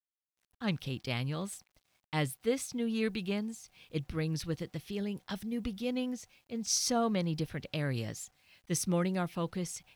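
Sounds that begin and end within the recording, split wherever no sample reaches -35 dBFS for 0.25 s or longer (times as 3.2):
0.62–1.53
2.13–3.5
3.94–6.15
6.52–8.23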